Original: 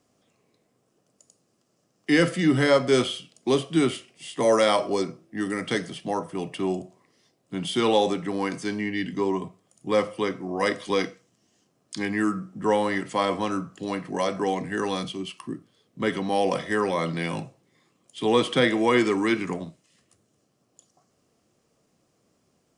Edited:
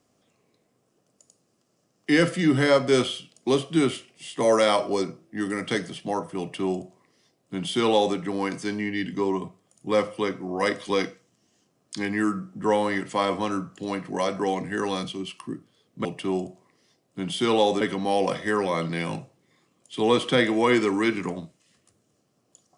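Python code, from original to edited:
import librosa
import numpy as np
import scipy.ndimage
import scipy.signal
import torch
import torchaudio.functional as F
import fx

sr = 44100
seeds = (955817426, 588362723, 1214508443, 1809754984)

y = fx.edit(x, sr, fx.duplicate(start_s=6.4, length_s=1.76, to_s=16.05), tone=tone)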